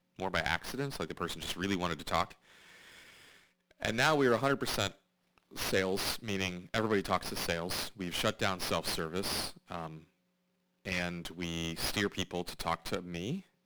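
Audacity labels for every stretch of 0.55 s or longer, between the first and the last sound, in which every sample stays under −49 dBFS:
10.010000	10.850000	silence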